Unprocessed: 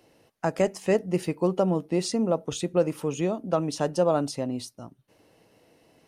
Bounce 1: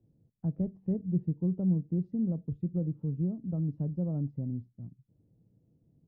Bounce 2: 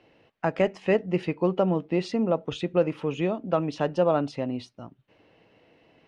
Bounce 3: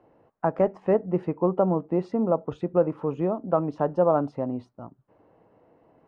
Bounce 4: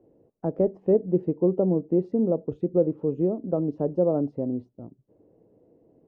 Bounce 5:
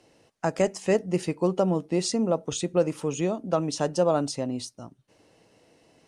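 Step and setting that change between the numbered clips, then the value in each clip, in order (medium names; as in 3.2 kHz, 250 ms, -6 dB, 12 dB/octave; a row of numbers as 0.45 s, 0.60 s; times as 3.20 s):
resonant low-pass, frequency: 150 Hz, 2.8 kHz, 1.1 kHz, 430 Hz, 7.9 kHz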